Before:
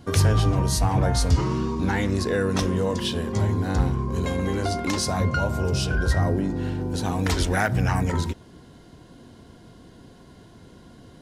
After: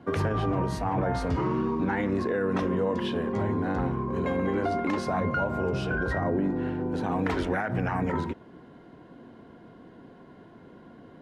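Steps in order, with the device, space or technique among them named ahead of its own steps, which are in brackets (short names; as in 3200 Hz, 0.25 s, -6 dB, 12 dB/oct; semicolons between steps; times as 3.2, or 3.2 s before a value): DJ mixer with the lows and highs turned down (three-band isolator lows -14 dB, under 160 Hz, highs -22 dB, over 2500 Hz; limiter -19 dBFS, peak gain reduction 9 dB); gain +1 dB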